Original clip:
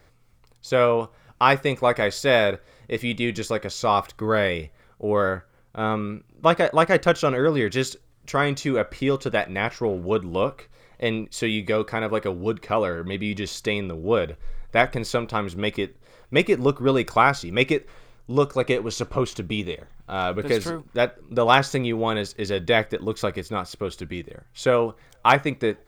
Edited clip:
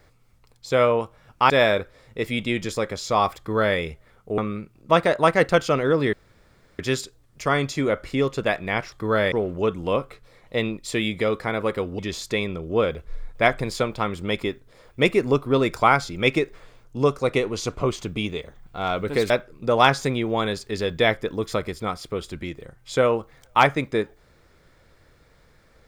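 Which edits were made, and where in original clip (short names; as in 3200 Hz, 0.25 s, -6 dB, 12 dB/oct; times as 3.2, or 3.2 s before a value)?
1.5–2.23 cut
4.11–4.51 copy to 9.8
5.11–5.92 cut
7.67 insert room tone 0.66 s
12.47–13.33 cut
20.64–20.99 cut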